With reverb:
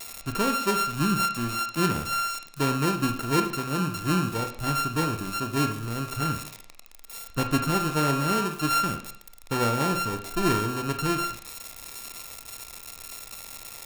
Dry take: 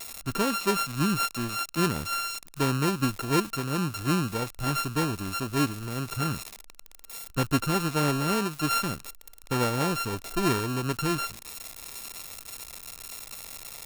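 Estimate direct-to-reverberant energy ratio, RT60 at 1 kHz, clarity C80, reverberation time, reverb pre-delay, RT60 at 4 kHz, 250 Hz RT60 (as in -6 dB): 5.5 dB, 0.55 s, 12.5 dB, 0.55 s, 26 ms, 0.55 s, 0.55 s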